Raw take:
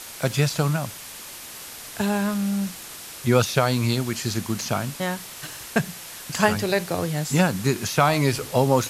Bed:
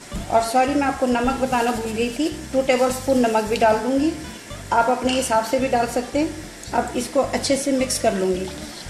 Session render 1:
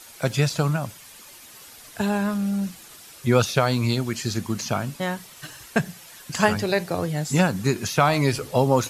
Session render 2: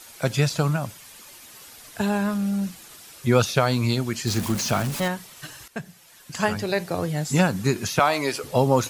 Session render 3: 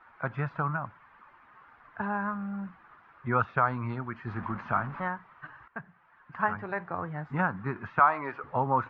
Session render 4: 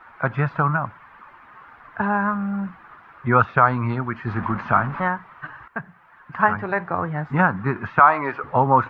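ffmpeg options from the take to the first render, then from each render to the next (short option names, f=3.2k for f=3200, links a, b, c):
-af "afftdn=nr=9:nf=-39"
-filter_complex "[0:a]asettb=1/sr,asplit=3[a][b][c];[a]atrim=end=4.274[d];[b]atrim=start=4.27:end=5.08,asetpts=PTS-STARTPTS,afade=t=in:d=0.004:c=qsin,afade=t=out:st=0.806:d=0.004:c=qsin,aeval=exprs='val(0)+0.5*0.0447*sgn(val(0))':c=same[e];[c]atrim=start=5.076[f];[d][e]acrossfade=d=0.004:c1=hsin:c2=qsin[g];[g][f]acrossfade=d=0.004:c1=qsin:c2=hsin,asettb=1/sr,asplit=3[h][i][j];[h]atrim=end=7.994[k];[i]atrim=start=7.99:end=8.44,asetpts=PTS-STARTPTS,afade=t=in:d=0.004:c=qsin,afade=t=out:st=0.446:d=0.004:c=qsin,highpass=340[l];[j]atrim=start=8.436[m];[k][l]acrossfade=d=0.004:c1=hsin:c2=qsin[n];[n][m]acrossfade=d=0.004:c1=qsin:c2=hsin,asplit=2[o][p];[o]atrim=end=5.68,asetpts=PTS-STARTPTS,afade=t=out:st=5.676:d=0.004:c=hsin:silence=0.223872[q];[p]atrim=start=5.68,asetpts=PTS-STARTPTS,afade=t=in:d=1.42:silence=0.223872[r];[q][r]concat=n=2:v=0:a=1"
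-af "lowpass=f=1.5k:w=0.5412,lowpass=f=1.5k:w=1.3066,lowshelf=f=760:t=q:w=1.5:g=-10.5"
-af "volume=10dB,alimiter=limit=-2dB:level=0:latency=1"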